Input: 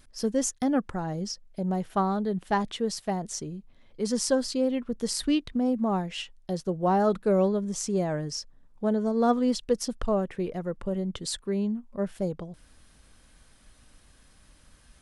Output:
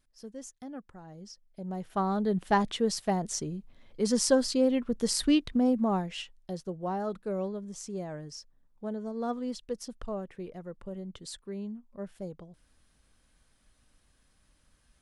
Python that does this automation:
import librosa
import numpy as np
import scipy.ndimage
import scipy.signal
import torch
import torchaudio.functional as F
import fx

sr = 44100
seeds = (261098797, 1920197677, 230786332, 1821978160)

y = fx.gain(x, sr, db=fx.line((1.01, -17.0), (1.68, -9.0), (2.3, 1.0), (5.63, 1.0), (7.0, -10.0)))